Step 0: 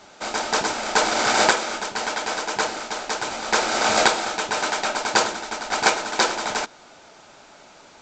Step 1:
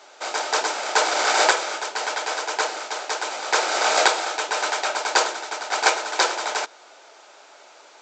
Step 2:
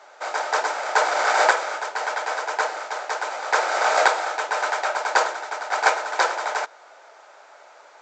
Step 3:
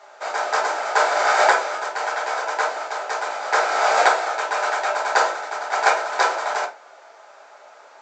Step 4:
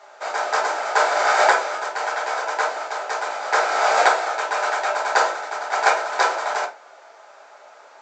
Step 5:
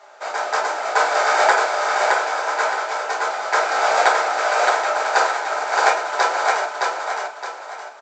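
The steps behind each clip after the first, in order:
high-pass filter 380 Hz 24 dB per octave
flat-topped bell 1,000 Hz +8.5 dB 2.4 octaves; level −7 dB
rectangular room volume 190 cubic metres, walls furnished, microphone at 1.3 metres; level −1 dB
no processing that can be heard
repeating echo 617 ms, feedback 37%, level −3 dB

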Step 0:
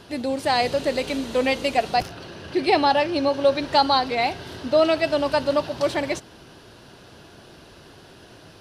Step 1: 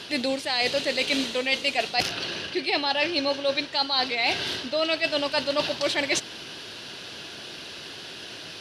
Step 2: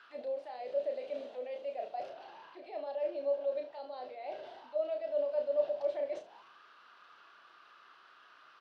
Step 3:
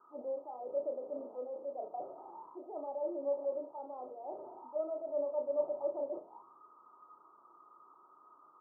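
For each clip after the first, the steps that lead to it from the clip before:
meter weighting curve D; reversed playback; downward compressor 10 to 1, threshold −24 dBFS, peak gain reduction 16.5 dB; reversed playback; level +3 dB
envelope filter 590–1,500 Hz, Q 9.1, down, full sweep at −23 dBFS; transient designer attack −2 dB, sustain +4 dB; ambience of single reflections 32 ms −5.5 dB, 72 ms −15.5 dB; level −2.5 dB
Chebyshev low-pass with heavy ripple 1,300 Hz, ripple 9 dB; level +6 dB

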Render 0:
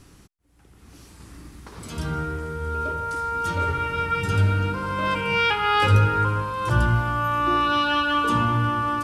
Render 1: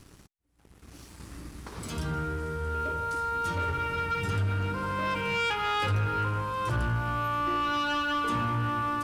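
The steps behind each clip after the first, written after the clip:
downward compressor 1.5 to 1, threshold −33 dBFS, peak gain reduction 7.5 dB
leveller curve on the samples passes 2
level −7.5 dB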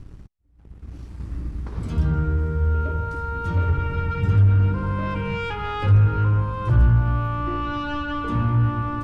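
RIAA equalisation playback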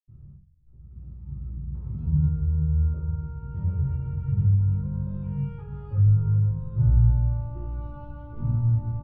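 comb filter 5.5 ms, depth 45%
convolution reverb, pre-delay 76 ms
level −8 dB

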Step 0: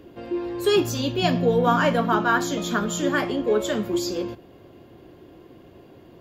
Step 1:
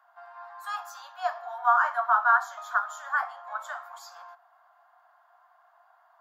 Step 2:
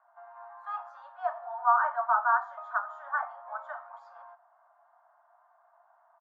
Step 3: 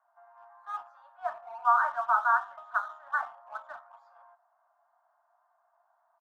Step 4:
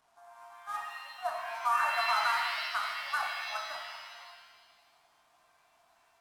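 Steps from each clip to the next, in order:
Butterworth high-pass 680 Hz 96 dB per octave; high shelf with overshoot 1,900 Hz −11 dB, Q 3; level −4 dB
low-pass filter 1,100 Hz 12 dB per octave; comb filter 3.3 ms, depth 38%
dynamic equaliser 1,500 Hz, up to +6 dB, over −39 dBFS, Q 0.94; in parallel at −8 dB: dead-zone distortion −40.5 dBFS; on the sum: level −7 dB
variable-slope delta modulation 64 kbit/s; brickwall limiter −22.5 dBFS, peak gain reduction 10 dB; reverb with rising layers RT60 1.3 s, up +7 semitones, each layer −2 dB, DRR 3 dB

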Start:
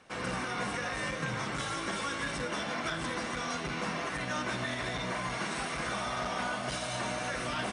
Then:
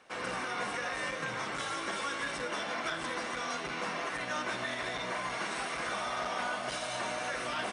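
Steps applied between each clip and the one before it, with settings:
bass and treble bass −11 dB, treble −2 dB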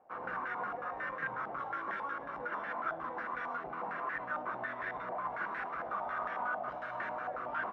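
low-pass on a step sequencer 11 Hz 760–1,700 Hz
level −8 dB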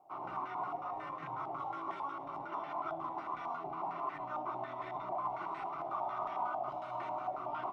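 phaser with its sweep stopped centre 330 Hz, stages 8
level +3 dB

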